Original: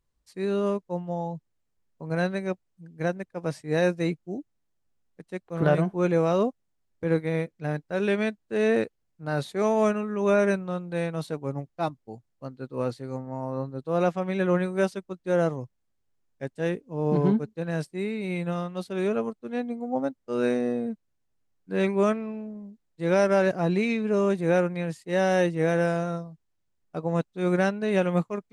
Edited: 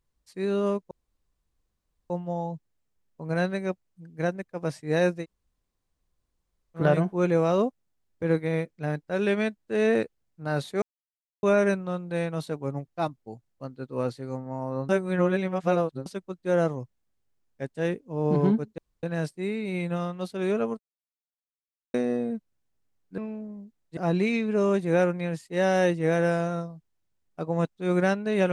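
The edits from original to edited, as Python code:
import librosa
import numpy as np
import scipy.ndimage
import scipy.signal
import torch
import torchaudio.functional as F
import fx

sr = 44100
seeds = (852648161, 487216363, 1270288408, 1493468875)

y = fx.edit(x, sr, fx.insert_room_tone(at_s=0.91, length_s=1.19),
    fx.room_tone_fill(start_s=4.02, length_s=1.58, crossfade_s=0.1),
    fx.silence(start_s=9.63, length_s=0.61),
    fx.reverse_span(start_s=13.7, length_s=1.17),
    fx.insert_room_tone(at_s=17.59, length_s=0.25),
    fx.silence(start_s=19.35, length_s=1.15),
    fx.cut(start_s=21.74, length_s=0.5),
    fx.cut(start_s=23.03, length_s=0.5), tone=tone)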